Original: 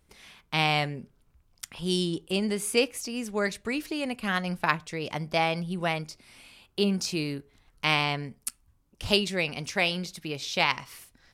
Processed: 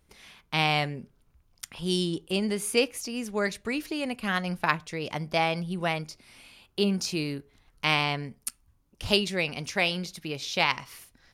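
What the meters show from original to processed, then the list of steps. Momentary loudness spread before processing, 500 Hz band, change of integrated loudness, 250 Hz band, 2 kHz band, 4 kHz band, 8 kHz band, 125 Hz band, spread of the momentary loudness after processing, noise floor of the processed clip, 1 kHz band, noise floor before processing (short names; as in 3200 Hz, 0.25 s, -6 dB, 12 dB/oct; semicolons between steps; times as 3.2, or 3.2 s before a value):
13 LU, 0.0 dB, 0.0 dB, 0.0 dB, 0.0 dB, 0.0 dB, -0.5 dB, 0.0 dB, 13 LU, -66 dBFS, 0.0 dB, -66 dBFS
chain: notch 7800 Hz, Q 15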